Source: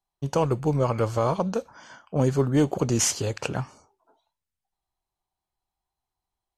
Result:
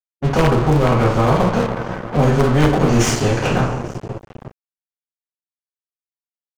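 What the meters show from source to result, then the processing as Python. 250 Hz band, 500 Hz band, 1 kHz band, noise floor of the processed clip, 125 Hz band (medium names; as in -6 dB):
+9.0 dB, +8.0 dB, +11.0 dB, under -85 dBFS, +10.0 dB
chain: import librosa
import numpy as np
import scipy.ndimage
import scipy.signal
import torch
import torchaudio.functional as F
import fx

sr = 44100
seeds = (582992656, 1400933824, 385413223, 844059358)

p1 = x + fx.echo_single(x, sr, ms=846, db=-24.0, dry=0)
p2 = fx.rev_double_slope(p1, sr, seeds[0], early_s=0.44, late_s=2.3, knee_db=-18, drr_db=-9.0)
p3 = (np.mod(10.0 ** (4.0 / 20.0) * p2 + 1.0, 2.0) - 1.0) / 10.0 ** (4.0 / 20.0)
p4 = p2 + (p3 * librosa.db_to_amplitude(-5.5))
p5 = fx.tilt_eq(p4, sr, slope=-4.5)
p6 = np.sign(p5) * np.maximum(np.abs(p5) - 10.0 ** (-26.5 / 20.0), 0.0)
p7 = fx.high_shelf(p6, sr, hz=4200.0, db=-5.5)
p8 = fx.spectral_comp(p7, sr, ratio=2.0)
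y = p8 * librosa.db_to_amplitude(-12.5)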